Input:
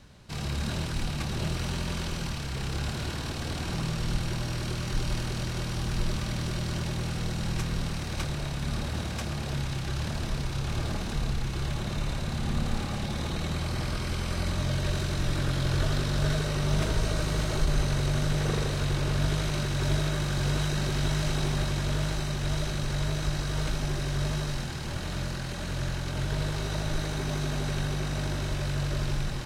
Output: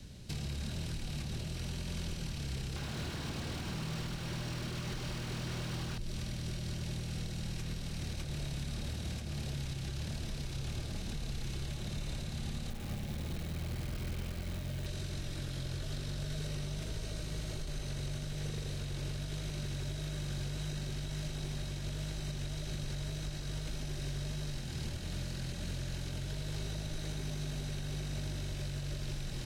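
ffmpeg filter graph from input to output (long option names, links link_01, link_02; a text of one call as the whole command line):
ffmpeg -i in.wav -filter_complex "[0:a]asettb=1/sr,asplit=3[link_01][link_02][link_03];[link_01]atrim=end=2.764[link_04];[link_02]atrim=start=2.76:end=5.98,asetpts=PTS-STARTPTS,afade=type=in:duration=0.004:curve=qsin,afade=type=out:start_time=3.216:duration=0.004:curve=qsin,asplit=2[link_05][link_06];[link_06]highpass=frequency=720:poles=1,volume=33dB,asoftclip=type=tanh:threshold=-15dB[link_07];[link_05][link_07]amix=inputs=2:normalize=0,lowpass=frequency=2100:poles=1,volume=-6dB,equalizer=frequency=1100:width=1.3:gain=6[link_08];[link_03]atrim=start=5.976[link_09];[link_04][link_08]acrossfade=duration=0.004:curve1=hsin:curve2=qsin[link_10];[link_10][link_09]acrossfade=duration=0.004:curve1=qsin:curve2=hsin,asettb=1/sr,asplit=3[link_11][link_12][link_13];[link_11]atrim=end=12.704[link_14];[link_12]atrim=start=12.7:end=14.86,asetpts=PTS-STARTPTS,afade=type=in:duration=0.004:curve=qsin,afade=type=out:start_time=2.156:duration=0.004:curve=qsin,adynamicsmooth=sensitivity=2.5:basefreq=2200,acrusher=bits=8:dc=4:mix=0:aa=0.000001[link_15];[link_13]atrim=start=14.856[link_16];[link_14][link_15]acrossfade=duration=0.004:curve1=hsin:curve2=qsin[link_17];[link_17][link_16]acrossfade=duration=0.004:curve1=qsin:curve2=hsin,equalizer=frequency=1100:width_type=o:width=1.8:gain=-14,acrossover=split=220|550|1800|4100[link_18][link_19][link_20][link_21][link_22];[link_18]acompressor=threshold=-36dB:ratio=4[link_23];[link_19]acompressor=threshold=-51dB:ratio=4[link_24];[link_20]acompressor=threshold=-50dB:ratio=4[link_25];[link_21]acompressor=threshold=-51dB:ratio=4[link_26];[link_22]acompressor=threshold=-51dB:ratio=4[link_27];[link_23][link_24][link_25][link_26][link_27]amix=inputs=5:normalize=0,alimiter=level_in=10dB:limit=-24dB:level=0:latency=1:release=383,volume=-10dB,volume=4.5dB" out.wav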